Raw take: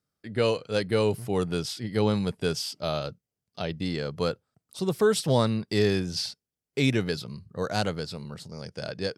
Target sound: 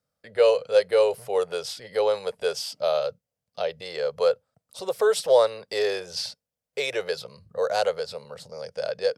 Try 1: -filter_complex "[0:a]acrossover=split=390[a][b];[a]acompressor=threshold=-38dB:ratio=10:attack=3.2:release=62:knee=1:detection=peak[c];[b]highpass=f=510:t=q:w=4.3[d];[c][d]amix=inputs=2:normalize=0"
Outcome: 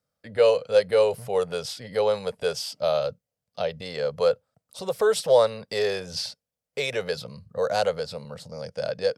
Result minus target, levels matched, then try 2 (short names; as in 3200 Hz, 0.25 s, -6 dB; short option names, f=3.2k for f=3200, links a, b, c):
compressor: peak gain reduction -10 dB
-filter_complex "[0:a]acrossover=split=390[a][b];[a]acompressor=threshold=-49dB:ratio=10:attack=3.2:release=62:knee=1:detection=peak[c];[b]highpass=f=510:t=q:w=4.3[d];[c][d]amix=inputs=2:normalize=0"